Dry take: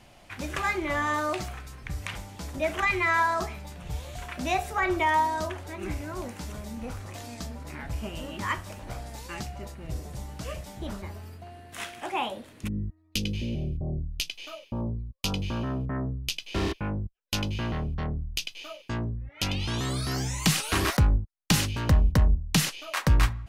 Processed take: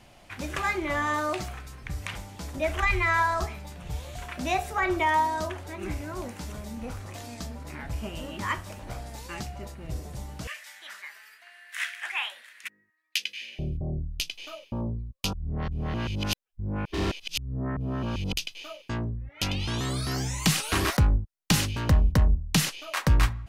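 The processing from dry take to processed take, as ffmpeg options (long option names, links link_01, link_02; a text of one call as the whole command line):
ffmpeg -i in.wav -filter_complex "[0:a]asplit=3[link_01][link_02][link_03];[link_01]afade=type=out:start_time=2.66:duration=0.02[link_04];[link_02]asubboost=boost=8:cutoff=77,afade=type=in:start_time=2.66:duration=0.02,afade=type=out:start_time=3.44:duration=0.02[link_05];[link_03]afade=type=in:start_time=3.44:duration=0.02[link_06];[link_04][link_05][link_06]amix=inputs=3:normalize=0,asettb=1/sr,asplit=3[link_07][link_08][link_09];[link_07]atrim=end=10.474[link_10];[link_08]atrim=start=10.47:end=13.59,asetpts=PTS-STARTPTS,afade=type=in:duration=0.004:curve=qsin,afade=type=out:start_time=3.116:duration=0.004:curve=qsin,highpass=frequency=1800:width_type=q:width=3.7[link_11];[link_09]atrim=start=13.586[link_12];[link_10][link_11]acrossfade=duration=0.004:curve1=hsin:curve2=qsin[link_13];[link_13][link_12]acrossfade=duration=0.004:curve1=qsin:curve2=hsin,asplit=3[link_14][link_15][link_16];[link_14]atrim=end=15.332[link_17];[link_15]atrim=start=15.328:end=18.332,asetpts=PTS-STARTPTS,areverse[link_18];[link_16]atrim=start=18.328[link_19];[link_17][link_18]acrossfade=duration=0.004:curve1=hsin:curve2=hsin[link_20];[link_20][link_19]acrossfade=duration=0.004:curve1=hsin:curve2=hsin" out.wav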